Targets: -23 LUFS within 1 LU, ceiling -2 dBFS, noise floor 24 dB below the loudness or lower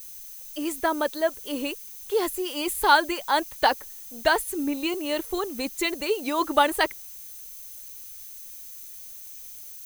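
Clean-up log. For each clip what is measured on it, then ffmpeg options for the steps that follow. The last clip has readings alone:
steady tone 6.2 kHz; tone level -53 dBFS; noise floor -42 dBFS; noise floor target -50 dBFS; loudness -25.5 LUFS; peak level -5.0 dBFS; loudness target -23.0 LUFS
-> -af "bandreject=f=6200:w=30"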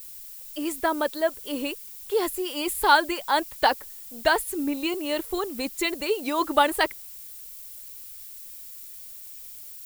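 steady tone not found; noise floor -42 dBFS; noise floor target -50 dBFS
-> -af "afftdn=nr=8:nf=-42"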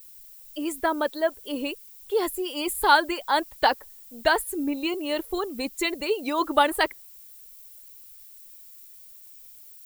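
noise floor -48 dBFS; noise floor target -50 dBFS
-> -af "afftdn=nr=6:nf=-48"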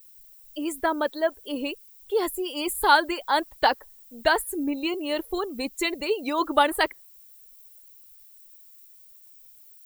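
noise floor -52 dBFS; loudness -25.5 LUFS; peak level -5.0 dBFS; loudness target -23.0 LUFS
-> -af "volume=1.33"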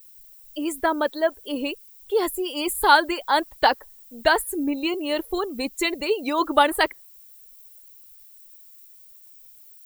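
loudness -23.0 LUFS; peak level -2.5 dBFS; noise floor -49 dBFS

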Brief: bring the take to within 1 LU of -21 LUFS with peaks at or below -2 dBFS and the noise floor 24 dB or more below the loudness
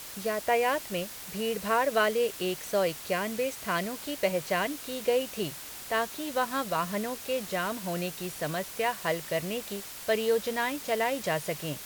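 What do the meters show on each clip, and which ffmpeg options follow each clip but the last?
noise floor -43 dBFS; noise floor target -54 dBFS; loudness -30.0 LUFS; peak level -13.0 dBFS; loudness target -21.0 LUFS
-> -af "afftdn=nr=11:nf=-43"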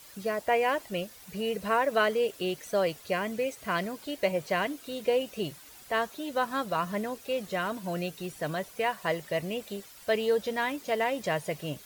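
noise floor -51 dBFS; noise floor target -55 dBFS
-> -af "afftdn=nr=6:nf=-51"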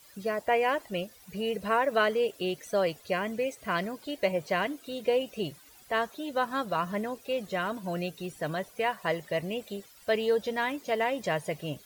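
noise floor -55 dBFS; loudness -30.5 LUFS; peak level -13.5 dBFS; loudness target -21.0 LUFS
-> -af "volume=2.99"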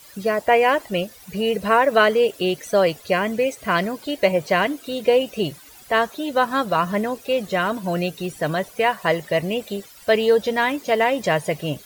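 loudness -21.0 LUFS; peak level -4.0 dBFS; noise floor -46 dBFS

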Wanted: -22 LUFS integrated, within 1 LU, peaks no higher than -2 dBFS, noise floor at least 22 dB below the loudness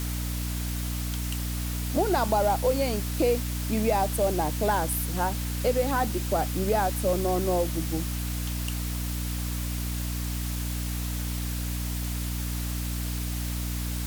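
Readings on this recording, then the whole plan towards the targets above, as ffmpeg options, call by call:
hum 60 Hz; highest harmonic 300 Hz; hum level -28 dBFS; noise floor -31 dBFS; noise floor target -50 dBFS; loudness -28.0 LUFS; peak level -12.0 dBFS; loudness target -22.0 LUFS
-> -af "bandreject=f=60:t=h:w=4,bandreject=f=120:t=h:w=4,bandreject=f=180:t=h:w=4,bandreject=f=240:t=h:w=4,bandreject=f=300:t=h:w=4"
-af "afftdn=nr=19:nf=-31"
-af "volume=2"

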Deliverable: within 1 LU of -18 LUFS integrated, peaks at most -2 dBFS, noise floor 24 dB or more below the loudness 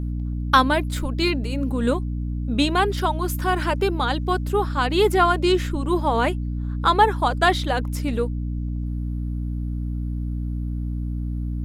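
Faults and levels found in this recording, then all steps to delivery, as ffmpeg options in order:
hum 60 Hz; highest harmonic 300 Hz; hum level -24 dBFS; loudness -23.0 LUFS; peak level -3.5 dBFS; loudness target -18.0 LUFS
-> -af "bandreject=f=60:t=h:w=4,bandreject=f=120:t=h:w=4,bandreject=f=180:t=h:w=4,bandreject=f=240:t=h:w=4,bandreject=f=300:t=h:w=4"
-af "volume=1.78,alimiter=limit=0.794:level=0:latency=1"

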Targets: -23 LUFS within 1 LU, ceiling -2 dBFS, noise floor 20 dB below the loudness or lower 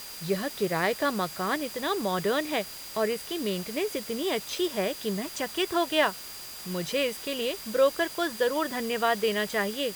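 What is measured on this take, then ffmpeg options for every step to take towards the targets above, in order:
steady tone 4.8 kHz; tone level -45 dBFS; noise floor -41 dBFS; noise floor target -49 dBFS; loudness -28.5 LUFS; peak level -11.5 dBFS; loudness target -23.0 LUFS
-> -af "bandreject=f=4800:w=30"
-af "afftdn=nr=8:nf=-41"
-af "volume=1.88"

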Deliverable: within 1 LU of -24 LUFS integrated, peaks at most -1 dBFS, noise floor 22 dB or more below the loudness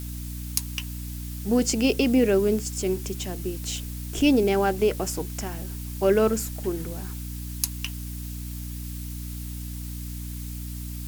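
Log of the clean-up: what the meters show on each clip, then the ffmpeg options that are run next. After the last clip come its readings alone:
hum 60 Hz; highest harmonic 300 Hz; hum level -32 dBFS; noise floor -34 dBFS; noise floor target -49 dBFS; loudness -27.0 LUFS; peak level -3.5 dBFS; loudness target -24.0 LUFS
-> -af "bandreject=f=60:t=h:w=4,bandreject=f=120:t=h:w=4,bandreject=f=180:t=h:w=4,bandreject=f=240:t=h:w=4,bandreject=f=300:t=h:w=4"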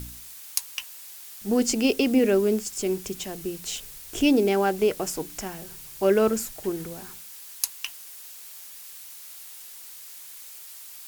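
hum not found; noise floor -43 dBFS; noise floor target -48 dBFS
-> -af "afftdn=nr=6:nf=-43"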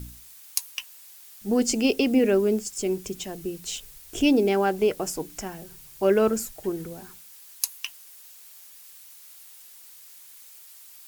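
noise floor -48 dBFS; loudness -25.5 LUFS; peak level -3.5 dBFS; loudness target -24.0 LUFS
-> -af "volume=1.19"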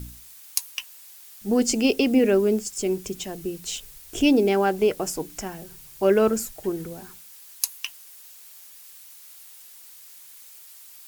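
loudness -24.0 LUFS; peak level -2.0 dBFS; noise floor -47 dBFS

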